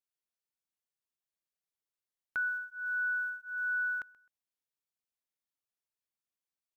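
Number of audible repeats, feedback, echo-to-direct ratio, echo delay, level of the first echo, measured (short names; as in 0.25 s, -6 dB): 2, 24%, -21.0 dB, 0.13 s, -21.0 dB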